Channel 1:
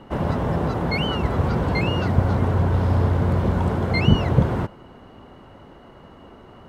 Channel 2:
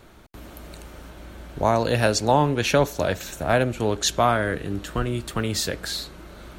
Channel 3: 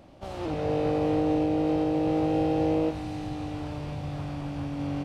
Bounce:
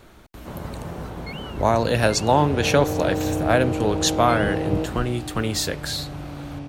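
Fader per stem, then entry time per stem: −11.0, +1.0, −1.0 decibels; 0.35, 0.00, 1.95 seconds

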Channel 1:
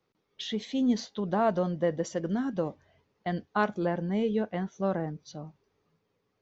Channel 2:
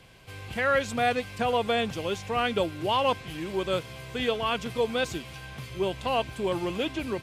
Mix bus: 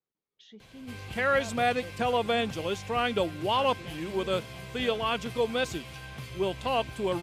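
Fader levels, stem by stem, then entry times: −18.5, −1.0 decibels; 0.00, 0.60 seconds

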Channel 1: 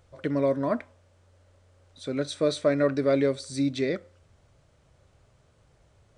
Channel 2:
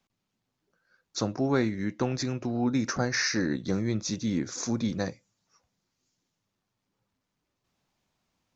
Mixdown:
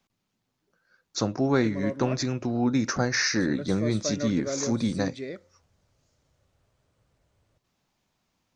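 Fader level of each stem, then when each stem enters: −9.0, +2.5 decibels; 1.40, 0.00 seconds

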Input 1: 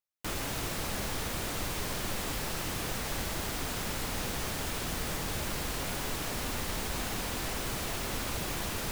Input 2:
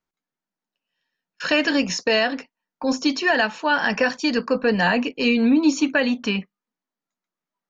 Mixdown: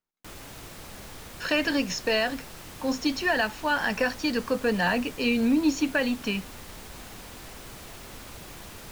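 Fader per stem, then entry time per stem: −8.5, −5.5 decibels; 0.00, 0.00 seconds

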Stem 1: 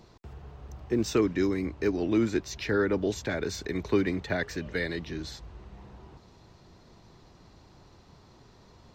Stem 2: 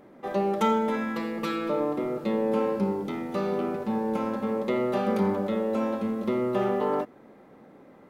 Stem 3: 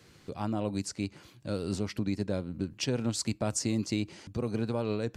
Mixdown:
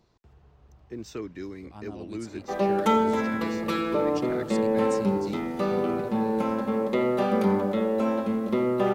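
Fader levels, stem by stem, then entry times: −11.0, +2.0, −10.5 decibels; 0.00, 2.25, 1.35 seconds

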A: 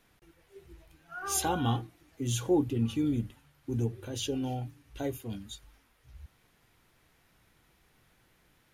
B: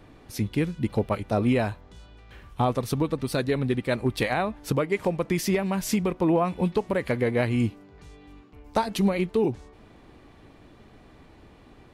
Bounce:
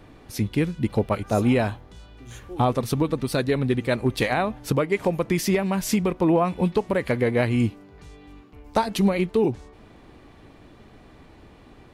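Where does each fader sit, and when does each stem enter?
−12.5, +2.5 decibels; 0.00, 0.00 seconds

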